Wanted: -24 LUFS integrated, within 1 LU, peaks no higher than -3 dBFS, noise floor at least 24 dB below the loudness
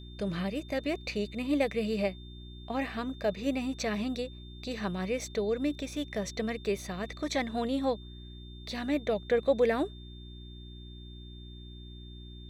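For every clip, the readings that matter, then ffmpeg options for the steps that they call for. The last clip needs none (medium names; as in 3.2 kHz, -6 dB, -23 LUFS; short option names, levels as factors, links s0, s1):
hum 60 Hz; highest harmonic 360 Hz; hum level -44 dBFS; steady tone 3.6 kHz; tone level -53 dBFS; loudness -32.5 LUFS; peak level -14.5 dBFS; loudness target -24.0 LUFS
-> -af "bandreject=f=60:t=h:w=4,bandreject=f=120:t=h:w=4,bandreject=f=180:t=h:w=4,bandreject=f=240:t=h:w=4,bandreject=f=300:t=h:w=4,bandreject=f=360:t=h:w=4"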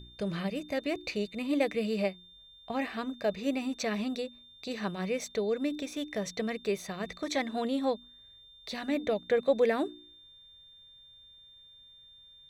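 hum not found; steady tone 3.6 kHz; tone level -53 dBFS
-> -af "bandreject=f=3600:w=30"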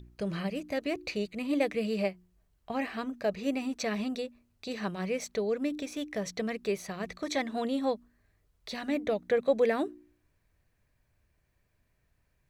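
steady tone not found; loudness -32.5 LUFS; peak level -15.0 dBFS; loudness target -24.0 LUFS
-> -af "volume=2.66"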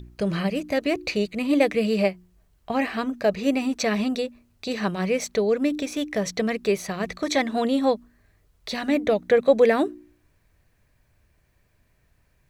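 loudness -24.0 LUFS; peak level -6.5 dBFS; noise floor -65 dBFS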